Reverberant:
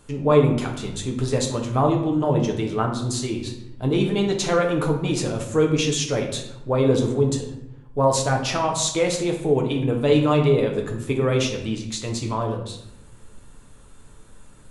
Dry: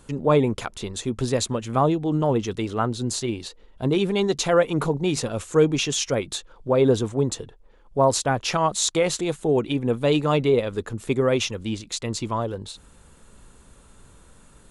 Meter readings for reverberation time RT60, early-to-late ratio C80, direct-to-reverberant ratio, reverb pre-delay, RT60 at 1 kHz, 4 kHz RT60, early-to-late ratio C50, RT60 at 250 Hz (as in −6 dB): 0.85 s, 9.5 dB, 1.0 dB, 7 ms, 0.80 s, 0.55 s, 6.5 dB, 1.3 s